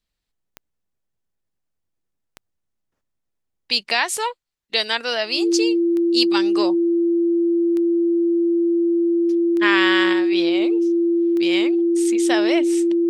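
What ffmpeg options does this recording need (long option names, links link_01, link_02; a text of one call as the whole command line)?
ffmpeg -i in.wav -af "adeclick=threshold=4,bandreject=frequency=340:width=30" out.wav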